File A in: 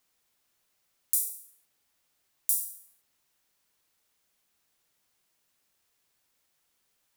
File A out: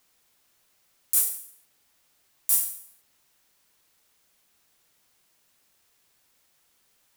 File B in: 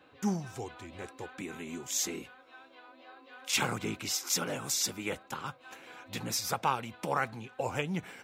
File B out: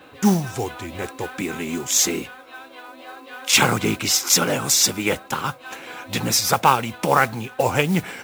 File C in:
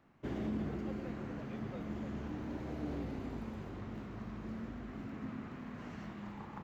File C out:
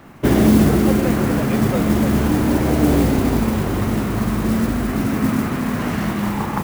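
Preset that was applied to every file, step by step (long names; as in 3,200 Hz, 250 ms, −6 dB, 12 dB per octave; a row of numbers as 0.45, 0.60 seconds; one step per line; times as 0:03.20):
noise that follows the level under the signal 19 dB
boost into a limiter +8 dB
normalise the peak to −1.5 dBFS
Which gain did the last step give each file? −0.5, +5.5, +16.5 decibels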